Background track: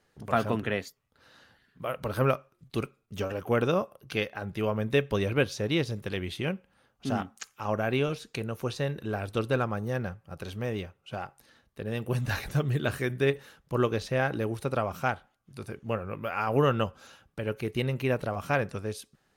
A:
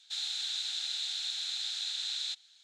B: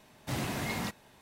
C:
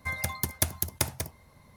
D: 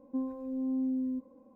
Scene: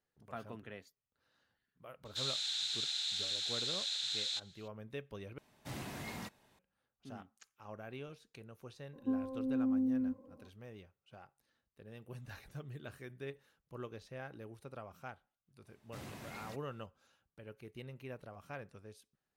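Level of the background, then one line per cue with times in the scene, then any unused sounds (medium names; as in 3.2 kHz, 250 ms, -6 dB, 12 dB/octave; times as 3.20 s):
background track -19.5 dB
2.05 s: add A -2 dB
5.38 s: replace with B -10 dB
8.93 s: add D -1 dB
15.65 s: add B -15 dB
not used: C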